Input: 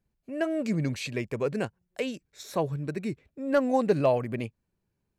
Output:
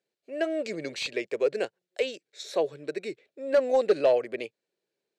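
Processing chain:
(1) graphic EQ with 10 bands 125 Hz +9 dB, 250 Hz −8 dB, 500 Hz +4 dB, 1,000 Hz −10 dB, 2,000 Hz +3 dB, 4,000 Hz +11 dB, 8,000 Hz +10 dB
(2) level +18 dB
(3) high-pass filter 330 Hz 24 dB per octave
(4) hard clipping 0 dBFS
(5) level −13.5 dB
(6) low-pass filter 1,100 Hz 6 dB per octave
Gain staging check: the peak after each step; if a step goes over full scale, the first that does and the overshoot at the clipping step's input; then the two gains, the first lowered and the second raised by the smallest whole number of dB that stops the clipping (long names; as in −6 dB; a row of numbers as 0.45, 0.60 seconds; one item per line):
−11.5, +6.5, +7.0, 0.0, −13.5, −13.5 dBFS
step 2, 7.0 dB
step 2 +11 dB, step 5 −6.5 dB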